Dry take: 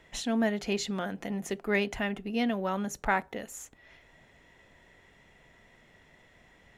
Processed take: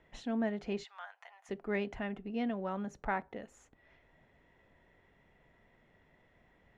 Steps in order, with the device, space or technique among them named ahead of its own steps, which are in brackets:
0:00.84–0:01.49: Butterworth high-pass 810 Hz 36 dB per octave
through cloth (low-pass filter 7,400 Hz 12 dB per octave; high-shelf EQ 3,100 Hz −14.5 dB)
level −5.5 dB

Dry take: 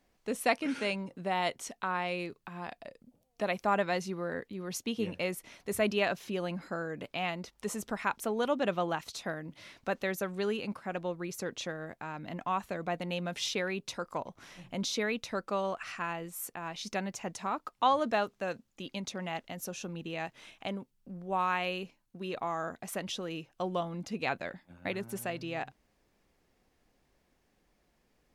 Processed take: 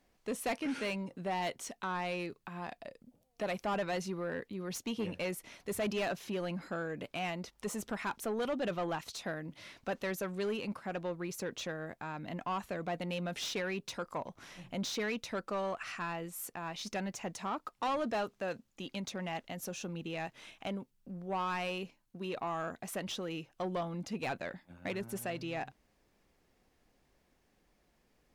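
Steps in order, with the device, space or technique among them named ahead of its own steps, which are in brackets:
saturation between pre-emphasis and de-emphasis (high-shelf EQ 3,300 Hz +9 dB; soft clipping −28.5 dBFS, distortion −10 dB; high-shelf EQ 3,300 Hz −9 dB)

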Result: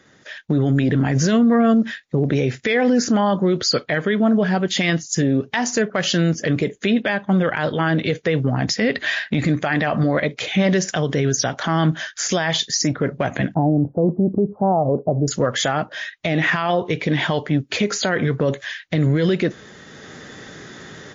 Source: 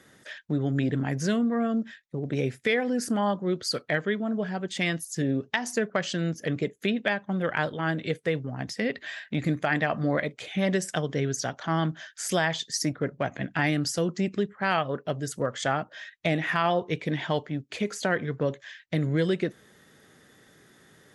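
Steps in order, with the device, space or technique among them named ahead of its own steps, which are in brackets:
0:13.54–0:15.28: Butterworth low-pass 860 Hz 48 dB per octave
low-bitrate web radio (automatic gain control gain up to 16 dB; brickwall limiter −12 dBFS, peak gain reduction 11 dB; level +3 dB; MP3 40 kbit/s 16,000 Hz)

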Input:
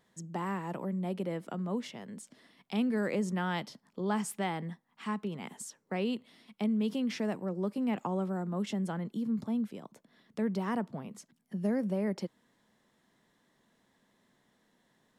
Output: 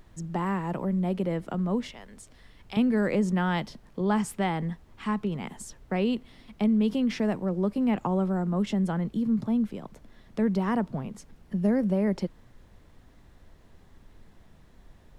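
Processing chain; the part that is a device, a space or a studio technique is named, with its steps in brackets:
0:01.91–0:02.77: high-pass filter 1,000 Hz 6 dB per octave
car interior (parametric band 120 Hz +6.5 dB 0.86 octaves; high-shelf EQ 4,400 Hz −6 dB; brown noise bed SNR 23 dB)
level +5.5 dB

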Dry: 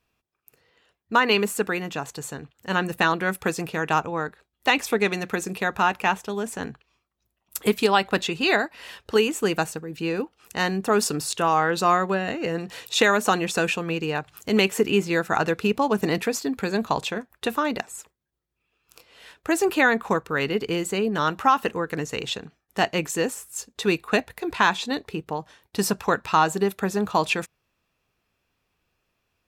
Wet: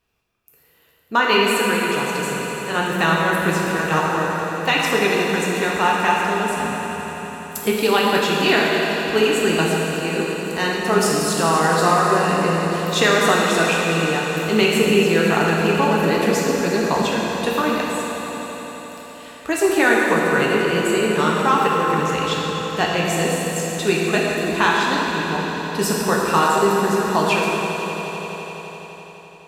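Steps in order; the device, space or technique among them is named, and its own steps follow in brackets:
echo that builds up and dies away 85 ms, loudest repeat 5, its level −16 dB
stairwell (convolution reverb RT60 2.7 s, pre-delay 3 ms, DRR −3 dB)

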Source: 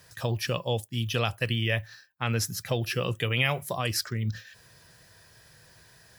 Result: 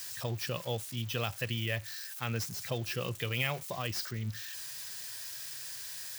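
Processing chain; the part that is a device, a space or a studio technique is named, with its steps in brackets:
budget class-D amplifier (gap after every zero crossing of 0.052 ms; spike at every zero crossing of −23.5 dBFS)
level −7 dB

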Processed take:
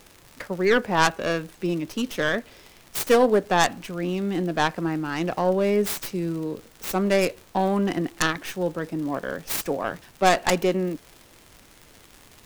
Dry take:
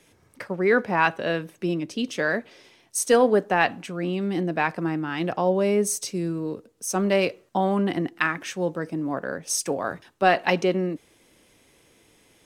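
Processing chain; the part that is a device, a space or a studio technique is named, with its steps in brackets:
record under a worn stylus (stylus tracing distortion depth 0.39 ms; surface crackle 96 per second −33 dBFS; pink noise bed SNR 29 dB)

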